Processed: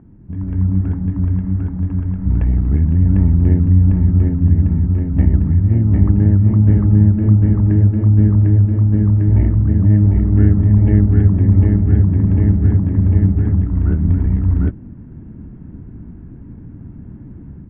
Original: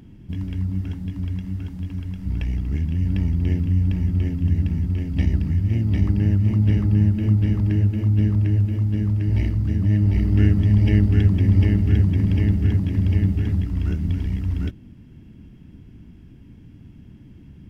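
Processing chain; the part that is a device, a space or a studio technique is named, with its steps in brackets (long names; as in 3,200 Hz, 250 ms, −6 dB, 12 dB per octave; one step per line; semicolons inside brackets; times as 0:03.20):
action camera in a waterproof case (low-pass filter 1,500 Hz 24 dB per octave; automatic gain control gain up to 10 dB; AAC 128 kbit/s 48,000 Hz)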